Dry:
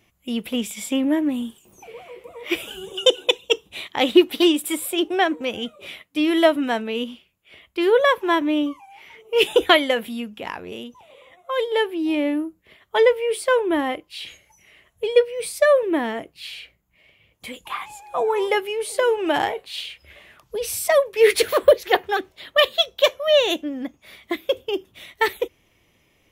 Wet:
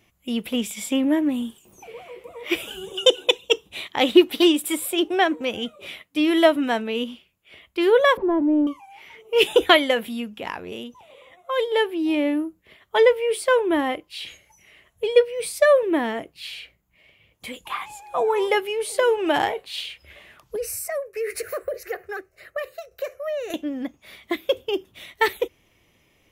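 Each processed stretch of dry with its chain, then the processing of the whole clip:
8.17–8.67 s: jump at every zero crossing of -24 dBFS + Chebyshev low-pass 500 Hz
20.56–23.54 s: tremolo saw down 1.7 Hz, depth 60% + compression 12:1, threshold -22 dBFS + static phaser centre 920 Hz, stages 6
whole clip: none

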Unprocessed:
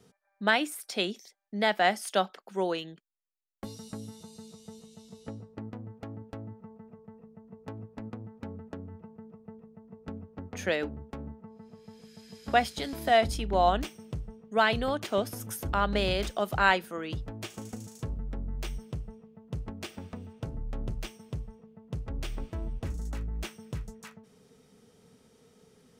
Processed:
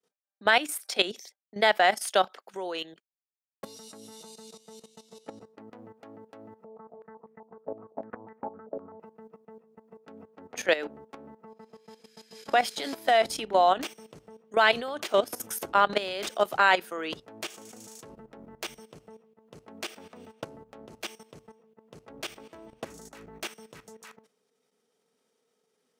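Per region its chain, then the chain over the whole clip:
6.64–9.00 s: distance through air 180 m + step-sequenced low-pass 7.9 Hz 590–2000 Hz
whole clip: expander -49 dBFS; high-pass 380 Hz 12 dB/octave; level held to a coarse grid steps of 14 dB; trim +8.5 dB

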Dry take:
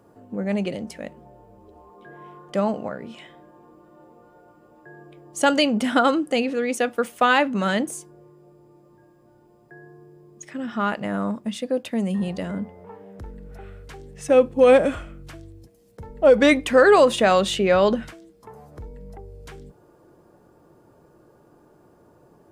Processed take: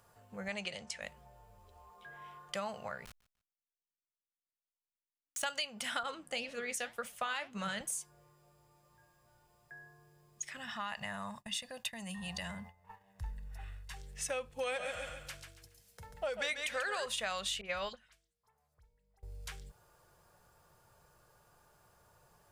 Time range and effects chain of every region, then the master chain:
0.48–1.02 s: low-pass 8.7 kHz 24 dB/octave + bass shelf 130 Hz -9 dB
3.05–5.43 s: send-on-delta sampling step -33 dBFS + compression 2:1, threshold -45 dBFS + feedback delay 148 ms, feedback 27%, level -22 dB
6.03–7.81 s: bass shelf 420 Hz +9.5 dB + flange 1.9 Hz, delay 3.2 ms, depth 9.8 ms, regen +71% + three bands expanded up and down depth 40%
10.57–13.97 s: expander -37 dBFS + comb 1.1 ms, depth 55% + compression 3:1, threshold -26 dBFS
14.50–17.06 s: high-pass 150 Hz 6 dB/octave + peaking EQ 1.1 kHz -4 dB 0.33 oct + feedback delay 139 ms, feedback 30%, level -7 dB
17.61–19.23 s: de-hum 47.91 Hz, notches 3 + phase dispersion highs, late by 47 ms, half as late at 2.5 kHz + upward expansion 2.5:1, over -29 dBFS
whole clip: amplifier tone stack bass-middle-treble 10-0-10; compression 5:1, threshold -38 dBFS; trim +3 dB

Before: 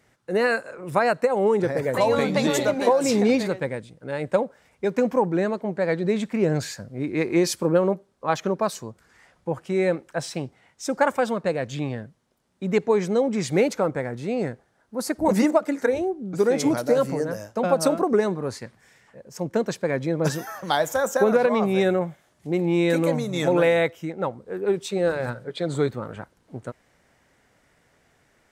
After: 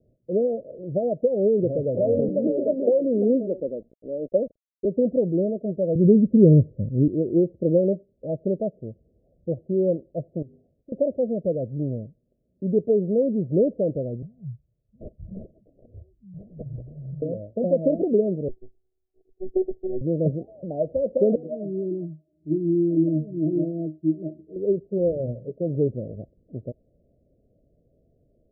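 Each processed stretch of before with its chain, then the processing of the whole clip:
2.28–4.85 s: high-pass 220 Hz 24 dB/octave + small samples zeroed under -45 dBFS
5.95–7.08 s: steep low-pass 600 Hz 48 dB/octave + bass shelf 380 Hz +11.5 dB
10.42–10.92 s: hum notches 50/100/150/200/250/300/350/400/450/500 Hz + compression 10:1, threshold -41 dBFS
14.22–17.22 s: elliptic band-stop 140–2100 Hz + decimation joined by straight lines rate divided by 8×
18.48–20.01 s: robot voice 375 Hz + three bands expanded up and down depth 70%
21.35–24.56 s: high-pass 98 Hz + peaking EQ 320 Hz +13.5 dB 1.4 oct + pitch-class resonator D#, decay 0.21 s
whole clip: steep low-pass 650 Hz 96 dB/octave; bass shelf 75 Hz +9.5 dB

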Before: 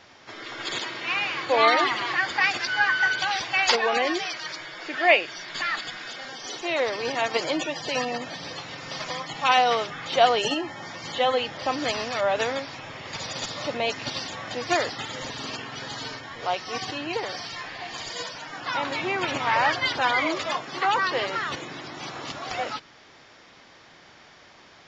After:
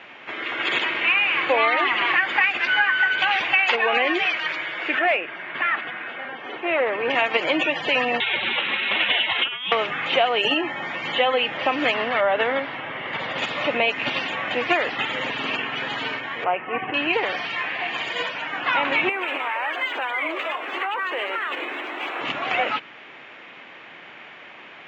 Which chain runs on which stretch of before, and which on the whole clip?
4.99–7.10 s: low-pass 1.9 kHz + valve stage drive 16 dB, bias 0.4
8.20–9.72 s: compressor with a negative ratio -27 dBFS, ratio -0.5 + frequency inversion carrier 4 kHz + loudspeaker Doppler distortion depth 0.11 ms
11.94–13.38 s: low-pass 3.5 kHz + band-stop 2.5 kHz, Q 6.2
16.44–16.94 s: steep low-pass 2.8 kHz 48 dB/octave + treble shelf 2.2 kHz -11 dB
19.09–22.21 s: high-pass 300 Hz 24 dB/octave + compression, threshold -31 dBFS + decimation joined by straight lines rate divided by 4×
whole clip: high-pass 190 Hz 12 dB/octave; resonant high shelf 3.7 kHz -12 dB, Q 3; compression 6:1, threshold -23 dBFS; trim +6.5 dB

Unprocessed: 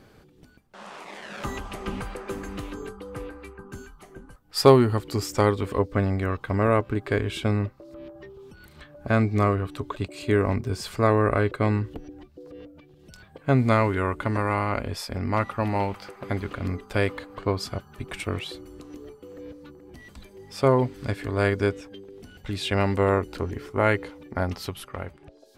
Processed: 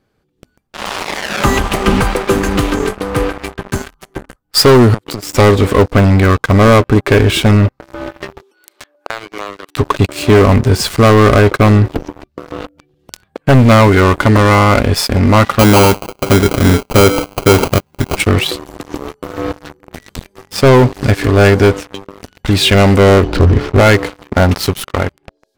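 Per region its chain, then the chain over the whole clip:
4.94–5.36 s: high-pass 82 Hz 24 dB/octave + compression 16:1, threshold -35 dBFS
8.42–9.77 s: steep high-pass 320 Hz + compression, threshold -37 dBFS + dynamic bell 550 Hz, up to -4 dB, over -50 dBFS, Q 0.73
15.59–18.17 s: dynamic bell 390 Hz, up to +7 dB, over -37 dBFS, Q 0.95 + sample-rate reducer 1.8 kHz
23.23–23.80 s: low-pass 4.9 kHz 24 dB/octave + bass shelf 210 Hz +9.5 dB
whole clip: waveshaping leveller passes 5; level rider gain up to 9 dB; trim -1 dB

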